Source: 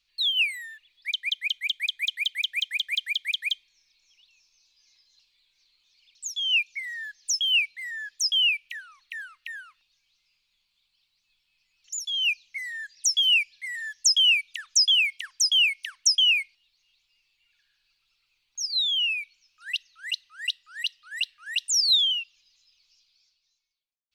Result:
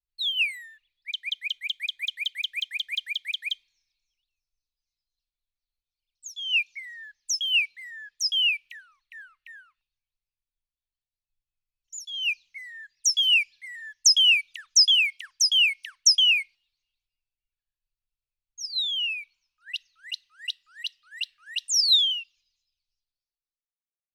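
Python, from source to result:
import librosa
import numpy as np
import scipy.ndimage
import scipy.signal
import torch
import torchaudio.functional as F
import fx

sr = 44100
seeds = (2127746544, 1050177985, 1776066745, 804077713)

y = fx.peak_eq(x, sr, hz=960.0, db=9.0, octaves=0.7, at=(18.87, 19.75))
y = fx.band_widen(y, sr, depth_pct=70)
y = y * librosa.db_to_amplitude(-2.5)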